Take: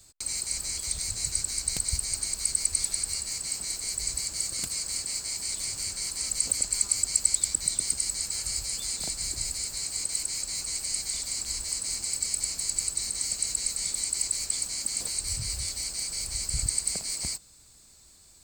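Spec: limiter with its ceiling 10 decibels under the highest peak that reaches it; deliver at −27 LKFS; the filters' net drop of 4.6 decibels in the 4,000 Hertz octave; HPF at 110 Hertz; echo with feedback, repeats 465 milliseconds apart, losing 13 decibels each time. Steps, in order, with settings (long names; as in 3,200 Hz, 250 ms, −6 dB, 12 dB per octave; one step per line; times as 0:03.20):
high-pass filter 110 Hz
parametric band 4,000 Hz −5.5 dB
brickwall limiter −18.5 dBFS
repeating echo 465 ms, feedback 22%, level −13 dB
level +3.5 dB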